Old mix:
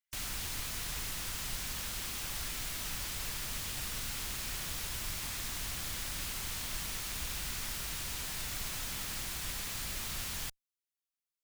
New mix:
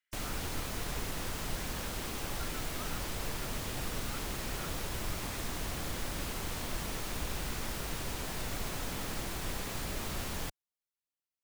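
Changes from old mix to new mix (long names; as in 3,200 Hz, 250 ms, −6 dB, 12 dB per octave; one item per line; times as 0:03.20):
background −9.5 dB
master: remove guitar amp tone stack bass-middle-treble 5-5-5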